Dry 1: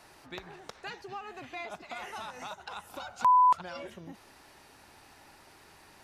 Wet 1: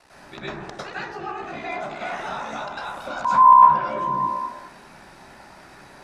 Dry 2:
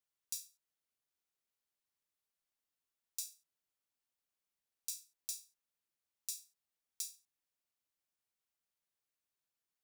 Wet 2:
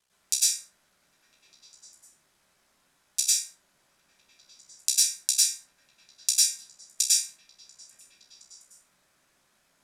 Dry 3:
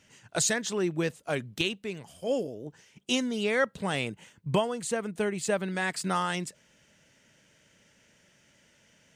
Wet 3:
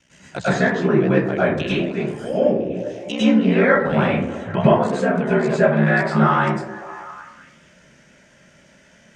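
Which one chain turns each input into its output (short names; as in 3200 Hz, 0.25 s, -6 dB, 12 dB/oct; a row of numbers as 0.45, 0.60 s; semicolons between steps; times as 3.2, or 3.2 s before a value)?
ring modulator 32 Hz; LPF 10000 Hz 12 dB/oct; treble ducked by the level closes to 2400 Hz, closed at -30 dBFS; delay with a stepping band-pass 0.201 s, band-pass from 310 Hz, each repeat 0.7 oct, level -9 dB; plate-style reverb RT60 0.65 s, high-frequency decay 0.35×, pre-delay 90 ms, DRR -10 dB; normalise peaks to -1.5 dBFS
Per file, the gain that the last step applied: +3.0, +20.5, +4.0 dB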